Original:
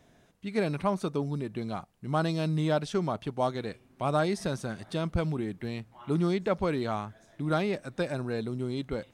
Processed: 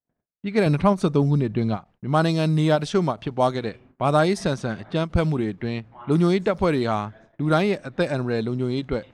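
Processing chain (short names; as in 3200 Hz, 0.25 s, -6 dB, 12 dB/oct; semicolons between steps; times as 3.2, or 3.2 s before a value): low-pass opened by the level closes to 1400 Hz, open at -24 dBFS; gate -57 dBFS, range -45 dB; 0.66–1.77 low shelf 200 Hz +8.5 dB; ending taper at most 310 dB/s; gain +8 dB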